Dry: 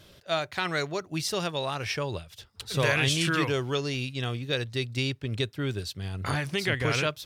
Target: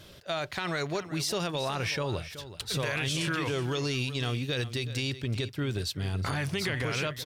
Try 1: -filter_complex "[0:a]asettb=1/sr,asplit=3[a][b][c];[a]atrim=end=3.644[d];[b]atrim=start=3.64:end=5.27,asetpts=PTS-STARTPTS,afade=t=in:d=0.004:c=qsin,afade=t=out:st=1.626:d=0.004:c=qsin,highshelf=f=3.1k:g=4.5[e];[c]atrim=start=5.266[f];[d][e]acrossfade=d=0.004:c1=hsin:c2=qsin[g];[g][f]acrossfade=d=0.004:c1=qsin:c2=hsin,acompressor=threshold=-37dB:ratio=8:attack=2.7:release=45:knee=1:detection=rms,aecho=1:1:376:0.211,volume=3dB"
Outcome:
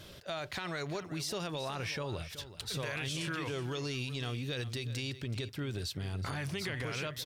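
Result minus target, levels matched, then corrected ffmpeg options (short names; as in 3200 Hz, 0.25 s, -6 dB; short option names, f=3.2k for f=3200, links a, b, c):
compressor: peak gain reduction +6.5 dB
-filter_complex "[0:a]asettb=1/sr,asplit=3[a][b][c];[a]atrim=end=3.644[d];[b]atrim=start=3.64:end=5.27,asetpts=PTS-STARTPTS,afade=t=in:d=0.004:c=qsin,afade=t=out:st=1.626:d=0.004:c=qsin,highshelf=f=3.1k:g=4.5[e];[c]atrim=start=5.266[f];[d][e]acrossfade=d=0.004:c1=hsin:c2=qsin[g];[g][f]acrossfade=d=0.004:c1=qsin:c2=hsin,acompressor=threshold=-29.5dB:ratio=8:attack=2.7:release=45:knee=1:detection=rms,aecho=1:1:376:0.211,volume=3dB"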